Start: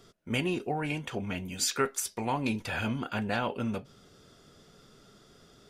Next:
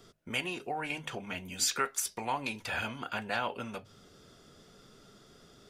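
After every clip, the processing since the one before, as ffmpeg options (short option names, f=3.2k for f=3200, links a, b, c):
-filter_complex "[0:a]bandreject=f=50:t=h:w=6,bandreject=f=100:t=h:w=6,bandreject=f=150:t=h:w=6,acrossover=split=580|2500[a][b][c];[a]acompressor=threshold=-43dB:ratio=4[d];[d][b][c]amix=inputs=3:normalize=0"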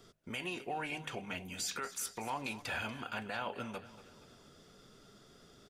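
-af "alimiter=level_in=1.5dB:limit=-24dB:level=0:latency=1:release=28,volume=-1.5dB,aecho=1:1:237|474|711|948:0.158|0.0792|0.0396|0.0198,volume=-2.5dB"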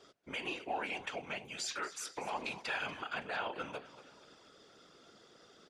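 -af "highpass=310,lowpass=6.3k,afftfilt=real='hypot(re,im)*cos(2*PI*random(0))':imag='hypot(re,im)*sin(2*PI*random(1))':win_size=512:overlap=0.75,volume=7.5dB"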